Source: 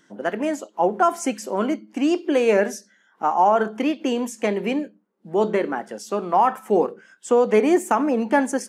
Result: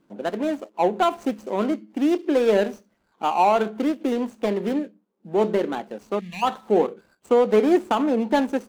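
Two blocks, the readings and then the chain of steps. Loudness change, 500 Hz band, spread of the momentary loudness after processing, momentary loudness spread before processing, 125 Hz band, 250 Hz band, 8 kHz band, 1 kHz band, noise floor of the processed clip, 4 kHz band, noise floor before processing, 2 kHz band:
-1.0 dB, -0.5 dB, 10 LU, 10 LU, 0.0 dB, -0.5 dB, under -10 dB, -2.5 dB, -69 dBFS, +0.5 dB, -61 dBFS, -4.0 dB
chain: median filter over 25 samples; time-frequency box 6.19–6.43 s, 220–1600 Hz -26 dB

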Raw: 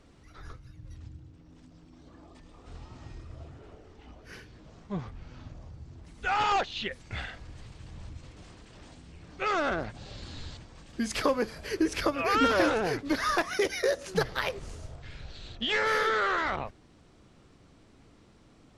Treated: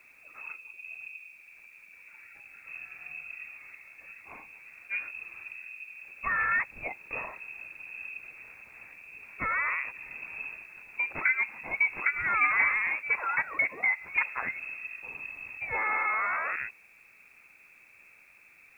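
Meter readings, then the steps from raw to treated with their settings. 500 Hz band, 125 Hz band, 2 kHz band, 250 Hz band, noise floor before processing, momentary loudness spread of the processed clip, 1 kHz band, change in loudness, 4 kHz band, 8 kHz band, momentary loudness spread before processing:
-16.5 dB, -15.0 dB, +5.5 dB, -20.0 dB, -58 dBFS, 21 LU, -3.5 dB, -1.0 dB, under -25 dB, under -20 dB, 23 LU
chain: low-pass that closes with the level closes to 1.4 kHz, closed at -27 dBFS; frequency inversion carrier 2.6 kHz; added noise white -72 dBFS

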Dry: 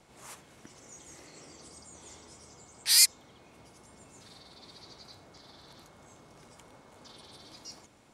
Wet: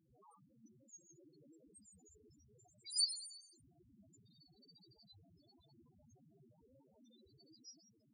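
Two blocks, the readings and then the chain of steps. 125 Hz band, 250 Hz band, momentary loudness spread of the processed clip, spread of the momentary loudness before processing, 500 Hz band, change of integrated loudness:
-10.5 dB, -10.5 dB, 22 LU, 10 LU, -15.5 dB, -16.5 dB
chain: Chebyshev shaper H 7 -13 dB, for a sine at -6.5 dBFS; Schroeder reverb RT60 1.2 s, combs from 31 ms, DRR 8.5 dB; loudest bins only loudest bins 2; trim +2.5 dB

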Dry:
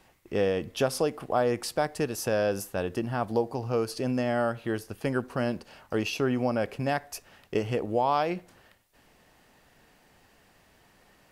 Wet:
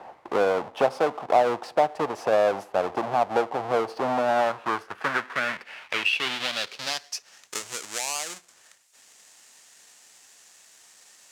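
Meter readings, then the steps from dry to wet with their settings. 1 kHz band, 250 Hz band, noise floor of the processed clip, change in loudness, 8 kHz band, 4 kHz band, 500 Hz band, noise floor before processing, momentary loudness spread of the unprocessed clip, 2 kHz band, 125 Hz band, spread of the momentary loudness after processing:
+6.0 dB, -5.5 dB, -57 dBFS, +3.0 dB, +6.0 dB, +8.5 dB, +2.5 dB, -62 dBFS, 6 LU, +7.0 dB, -11.0 dB, 10 LU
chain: square wave that keeps the level; band-pass sweep 770 Hz -> 7.2 kHz, 4.11–7.56 s; three bands compressed up and down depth 40%; trim +8.5 dB

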